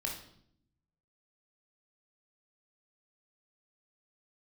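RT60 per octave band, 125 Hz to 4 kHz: 1.3 s, 1.1 s, 0.75 s, 0.60 s, 0.55 s, 0.60 s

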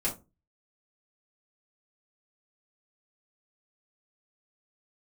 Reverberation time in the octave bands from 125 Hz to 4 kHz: 0.45 s, 0.35 s, 0.30 s, 0.25 s, 0.20 s, 0.15 s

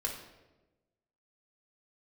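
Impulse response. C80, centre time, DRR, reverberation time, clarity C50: 8.5 dB, 32 ms, -1.0 dB, 1.1 s, 5.5 dB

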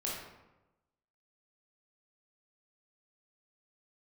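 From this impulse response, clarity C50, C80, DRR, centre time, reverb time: 0.5 dB, 4.0 dB, -5.0 dB, 63 ms, 1.0 s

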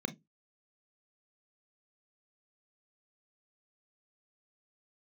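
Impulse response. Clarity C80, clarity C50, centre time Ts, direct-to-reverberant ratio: 32.0 dB, 19.5 dB, 9 ms, 10.0 dB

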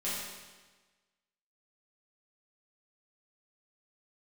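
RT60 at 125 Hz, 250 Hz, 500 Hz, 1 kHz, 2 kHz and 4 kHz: 1.3 s, 1.3 s, 1.3 s, 1.3 s, 1.3 s, 1.2 s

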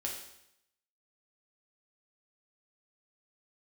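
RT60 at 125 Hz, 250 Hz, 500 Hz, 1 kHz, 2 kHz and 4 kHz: 0.85 s, 0.80 s, 0.80 s, 0.80 s, 0.80 s, 0.75 s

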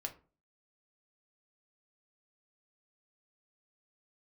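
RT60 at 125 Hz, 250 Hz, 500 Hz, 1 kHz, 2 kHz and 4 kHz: 0.50 s, 0.45 s, 0.40 s, 0.35 s, 0.30 s, 0.20 s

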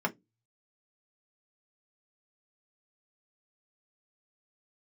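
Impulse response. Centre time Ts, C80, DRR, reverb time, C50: 6 ms, 36.0 dB, 2.0 dB, 0.15 s, 24.0 dB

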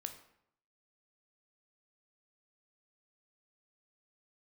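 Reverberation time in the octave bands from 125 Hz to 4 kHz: 0.80 s, 0.75 s, 0.75 s, 0.75 s, 0.65 s, 0.50 s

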